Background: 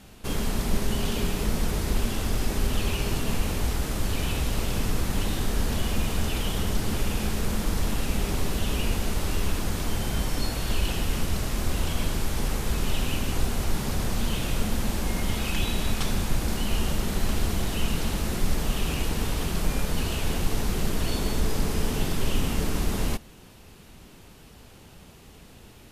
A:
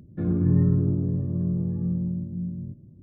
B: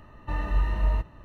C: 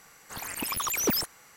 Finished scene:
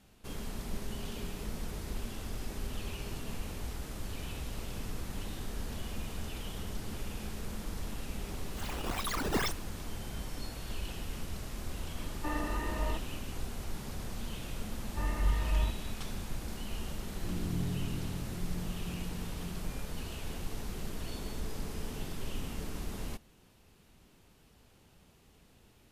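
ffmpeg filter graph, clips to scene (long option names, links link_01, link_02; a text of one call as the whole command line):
ffmpeg -i bed.wav -i cue0.wav -i cue1.wav -i cue2.wav -filter_complex "[2:a]asplit=2[link_01][link_02];[0:a]volume=-13dB[link_03];[3:a]acrusher=samples=12:mix=1:aa=0.000001:lfo=1:lforange=19.2:lforate=2.2[link_04];[link_01]lowshelf=frequency=200:width_type=q:width=3:gain=-9.5[link_05];[link_04]atrim=end=1.56,asetpts=PTS-STARTPTS,volume=-5.5dB,afade=type=in:duration=0.004:curve=hsin,afade=type=out:start_time=1.556:duration=0.004:curve=hsin,adelay=8270[link_06];[link_05]atrim=end=1.24,asetpts=PTS-STARTPTS,volume=-2dB,afade=type=in:duration=0.004:curve=hsin,afade=type=out:start_time=1.236:duration=0.004:curve=hsin,adelay=11960[link_07];[link_02]atrim=end=1.24,asetpts=PTS-STARTPTS,volume=-5.5dB,afade=type=in:duration=0.004:curve=hsin,afade=type=out:start_time=1.236:duration=0.004:curve=hsin,adelay=14690[link_08];[1:a]atrim=end=3.02,asetpts=PTS-STARTPTS,volume=-15.5dB,afade=type=in:duration=0.004:curve=hsin,afade=type=out:start_time=3.016:duration=0.004:curve=hsin,adelay=17040[link_09];[link_03][link_06][link_07][link_08][link_09]amix=inputs=5:normalize=0" out.wav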